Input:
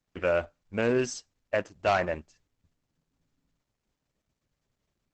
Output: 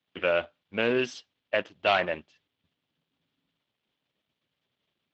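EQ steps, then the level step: Bessel high-pass 180 Hz, order 2; synth low-pass 3300 Hz, resonance Q 3.7; 0.0 dB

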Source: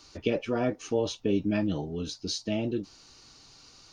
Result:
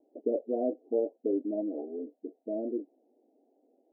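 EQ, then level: brick-wall FIR high-pass 230 Hz; steep low-pass 720 Hz 72 dB/oct; bell 290 Hz -2.5 dB; 0.0 dB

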